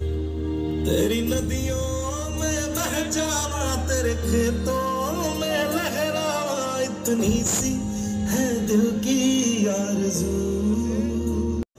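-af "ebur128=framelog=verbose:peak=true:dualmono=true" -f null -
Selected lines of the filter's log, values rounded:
Integrated loudness:
  I:         -20.6 LUFS
  Threshold: -30.6 LUFS
Loudness range:
  LRA:         2.1 LU
  Threshold: -40.5 LUFS
  LRA low:   -21.4 LUFS
  LRA high:  -19.3 LUFS
True peak:
  Peak:       -9.5 dBFS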